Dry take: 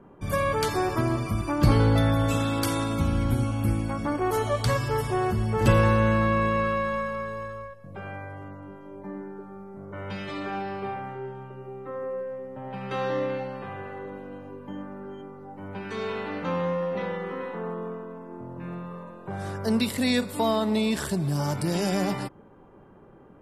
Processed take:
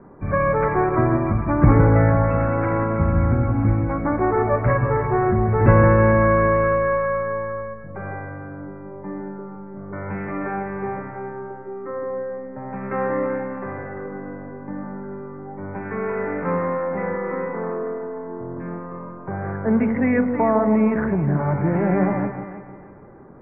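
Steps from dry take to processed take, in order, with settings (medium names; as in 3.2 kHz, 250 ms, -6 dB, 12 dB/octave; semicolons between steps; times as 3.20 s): steep low-pass 2.2 kHz 72 dB/octave; on a send: echo whose repeats swap between lows and highs 157 ms, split 920 Hz, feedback 56%, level -5.5 dB; on the sum: trim +5.5 dB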